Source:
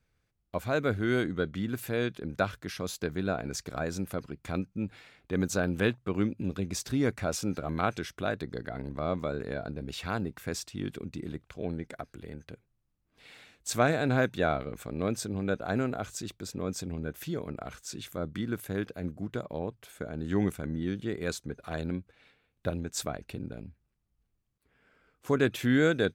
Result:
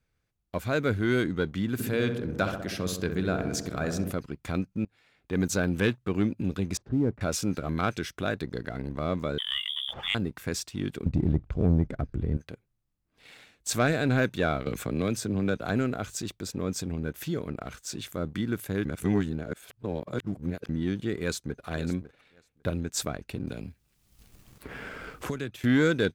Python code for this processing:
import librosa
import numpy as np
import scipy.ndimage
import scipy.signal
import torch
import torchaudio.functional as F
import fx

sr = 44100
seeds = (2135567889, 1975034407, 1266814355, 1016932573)

y = fx.echo_filtered(x, sr, ms=65, feedback_pct=75, hz=1300.0, wet_db=-6.5, at=(1.78, 4.11), fade=0.02)
y = fx.bessel_lowpass(y, sr, hz=540.0, order=2, at=(6.77, 7.21))
y = fx.freq_invert(y, sr, carrier_hz=3500, at=(9.38, 10.15))
y = fx.tilt_eq(y, sr, slope=-4.5, at=(11.06, 12.37))
y = fx.band_squash(y, sr, depth_pct=70, at=(14.66, 15.7))
y = fx.echo_throw(y, sr, start_s=21.2, length_s=0.46, ms=550, feedback_pct=20, wet_db=-14.0)
y = fx.band_squash(y, sr, depth_pct=100, at=(23.47, 25.64))
y = fx.edit(y, sr, fx.fade_in_from(start_s=4.85, length_s=0.58, floor_db=-22.0),
    fx.reverse_span(start_s=18.85, length_s=1.84), tone=tone)
y = fx.dynamic_eq(y, sr, hz=760.0, q=1.3, threshold_db=-45.0, ratio=4.0, max_db=-5)
y = fx.leveller(y, sr, passes=1)